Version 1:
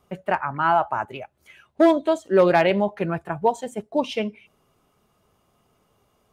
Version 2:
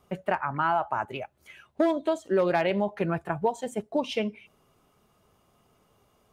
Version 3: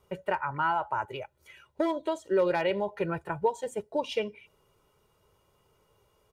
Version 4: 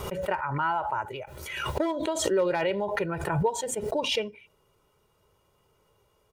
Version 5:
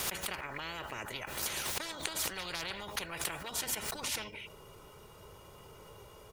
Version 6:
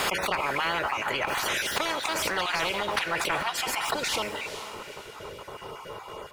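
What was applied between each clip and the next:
compressor 2.5:1, threshold -24 dBFS, peak gain reduction 9 dB
comb 2.1 ms, depth 60%; gain -3.5 dB
backwards sustainer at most 42 dB/s
spectral compressor 10:1; gain +1 dB
random spectral dropouts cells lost 22%; diffused feedback echo 0.457 s, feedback 42%, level -13.5 dB; overdrive pedal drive 17 dB, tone 1400 Hz, clips at -17.5 dBFS; gain +8.5 dB

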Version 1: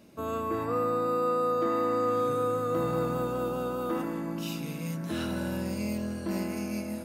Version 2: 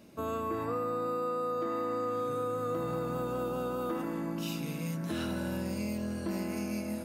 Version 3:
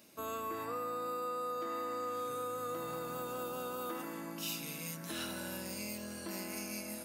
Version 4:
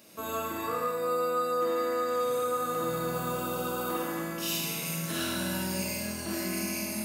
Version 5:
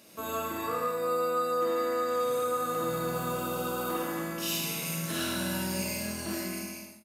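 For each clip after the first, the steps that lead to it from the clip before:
compressor, threshold -30 dBFS, peak gain reduction 6.5 dB
tilt +3 dB/oct; gain -4 dB
Schroeder reverb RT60 1.2 s, combs from 33 ms, DRR -2.5 dB; gain +4.5 dB
ending faded out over 0.77 s; downsampling 32000 Hz; crackle 37/s -44 dBFS

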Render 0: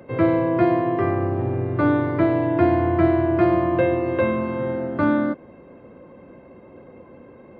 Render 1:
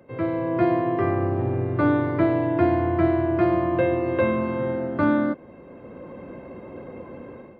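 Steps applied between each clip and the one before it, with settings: AGC gain up to 14 dB; gain -8 dB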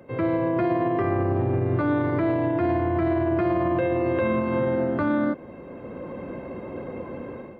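limiter -19.5 dBFS, peak gain reduction 10.5 dB; gain +4 dB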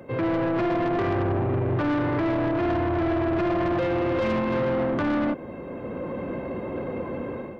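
soft clip -25.5 dBFS, distortion -10 dB; gain +4.5 dB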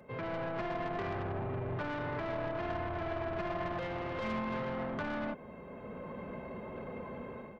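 bell 310 Hz -7.5 dB 0.95 oct; comb 4.7 ms, depth 37%; gain -9 dB

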